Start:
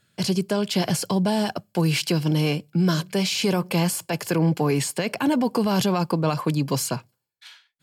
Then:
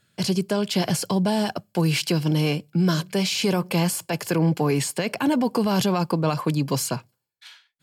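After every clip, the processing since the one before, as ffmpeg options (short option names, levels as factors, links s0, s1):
-af anull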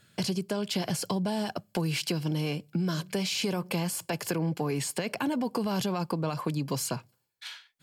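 -af "acompressor=threshold=0.0178:ratio=3,volume=1.58"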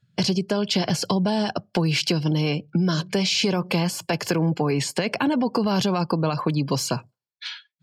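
-af "afftdn=nr=23:nf=-50,highshelf=f=7300:t=q:w=1.5:g=-7.5,volume=2.37"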